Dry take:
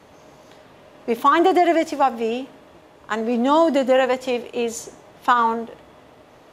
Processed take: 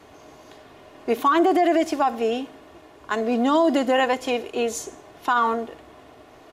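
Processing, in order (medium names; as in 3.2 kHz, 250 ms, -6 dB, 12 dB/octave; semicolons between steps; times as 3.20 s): comb 2.8 ms, depth 44%; peak limiter -11 dBFS, peak gain reduction 7.5 dB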